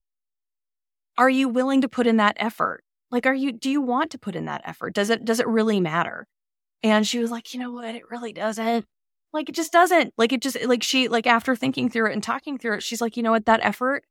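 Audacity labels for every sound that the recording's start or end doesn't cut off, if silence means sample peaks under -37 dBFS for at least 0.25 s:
1.180000	2.760000	sound
3.120000	6.230000	sound
6.840000	8.810000	sound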